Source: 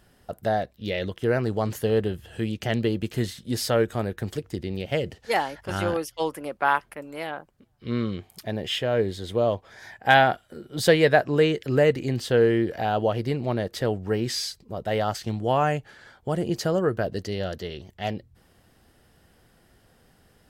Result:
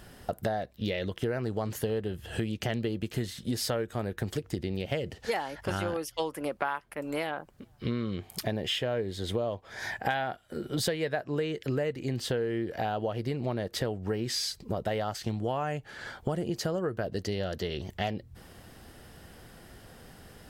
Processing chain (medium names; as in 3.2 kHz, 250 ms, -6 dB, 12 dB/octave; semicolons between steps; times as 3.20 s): compression 8:1, threshold -37 dBFS, peak gain reduction 24 dB; trim +8.5 dB